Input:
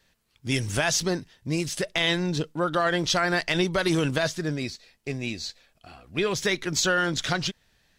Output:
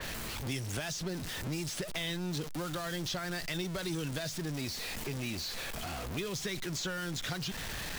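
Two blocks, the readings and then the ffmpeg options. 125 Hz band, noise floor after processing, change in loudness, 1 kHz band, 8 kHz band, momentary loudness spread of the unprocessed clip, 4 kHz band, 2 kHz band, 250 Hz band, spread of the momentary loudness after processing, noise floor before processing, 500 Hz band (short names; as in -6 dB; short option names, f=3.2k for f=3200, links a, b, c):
-7.0 dB, -40 dBFS, -10.5 dB, -13.0 dB, -8.5 dB, 9 LU, -9.0 dB, -12.0 dB, -9.5 dB, 2 LU, -68 dBFS, -12.5 dB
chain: -filter_complex "[0:a]aeval=exprs='val(0)+0.5*0.0596*sgn(val(0))':c=same,acrossover=split=190|3600[a][b][c];[a]acompressor=threshold=-33dB:ratio=4[d];[b]acompressor=threshold=-32dB:ratio=4[e];[c]acompressor=threshold=-31dB:ratio=4[f];[d][e][f]amix=inputs=3:normalize=0,adynamicequalizer=threshold=0.01:dfrequency=3400:dqfactor=0.7:tfrequency=3400:tqfactor=0.7:attack=5:release=100:ratio=0.375:range=1.5:mode=cutabove:tftype=highshelf,volume=-6.5dB"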